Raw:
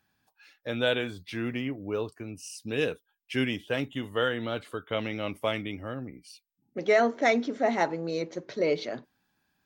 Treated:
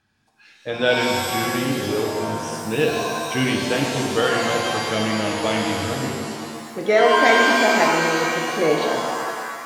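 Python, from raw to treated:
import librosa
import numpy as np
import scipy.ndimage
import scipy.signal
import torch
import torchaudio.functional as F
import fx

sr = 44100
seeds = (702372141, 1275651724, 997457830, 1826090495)

y = scipy.signal.sosfilt(scipy.signal.butter(2, 8900.0, 'lowpass', fs=sr, output='sos'), x)
y = fx.low_shelf(y, sr, hz=110.0, db=4.5)
y = fx.rev_shimmer(y, sr, seeds[0], rt60_s=1.9, semitones=7, shimmer_db=-2, drr_db=0.0)
y = y * 10.0 ** (4.5 / 20.0)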